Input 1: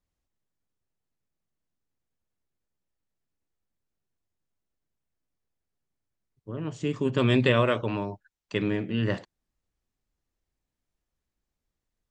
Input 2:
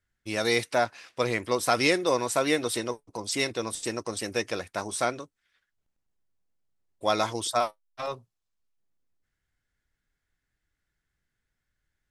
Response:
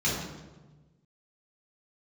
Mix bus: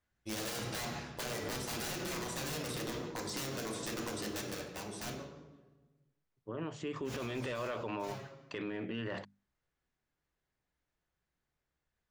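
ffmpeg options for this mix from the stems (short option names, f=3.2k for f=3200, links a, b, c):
-filter_complex "[0:a]asplit=2[a][b];[b]highpass=f=720:p=1,volume=15dB,asoftclip=type=tanh:threshold=-8dB[c];[a][c]amix=inputs=2:normalize=0,lowpass=f=1.9k:p=1,volume=-6dB,alimiter=limit=-16dB:level=0:latency=1,bandreject=f=50:t=h:w=6,bandreject=f=100:t=h:w=6,bandreject=f=150:t=h:w=6,bandreject=f=200:t=h:w=6,bandreject=f=250:t=h:w=6,volume=-5.5dB,asplit=2[d][e];[1:a]equalizer=f=880:w=0.3:g=4,acrossover=split=2800|5700[f][g][h];[f]acompressor=threshold=-20dB:ratio=4[i];[g]acompressor=threshold=-37dB:ratio=4[j];[h]acompressor=threshold=-37dB:ratio=4[k];[i][j][k]amix=inputs=3:normalize=0,aeval=exprs='(mod(11.9*val(0)+1,2)-1)/11.9':c=same,volume=-7dB,afade=t=out:st=4.03:d=0.55:silence=0.446684,asplit=2[l][m];[m]volume=-12dB[n];[e]apad=whole_len=534007[o];[l][o]sidechaincompress=threshold=-34dB:ratio=8:attack=6.9:release=214[p];[2:a]atrim=start_sample=2205[q];[n][q]afir=irnorm=-1:irlink=0[r];[d][p][r]amix=inputs=3:normalize=0,alimiter=level_in=6dB:limit=-24dB:level=0:latency=1:release=54,volume=-6dB"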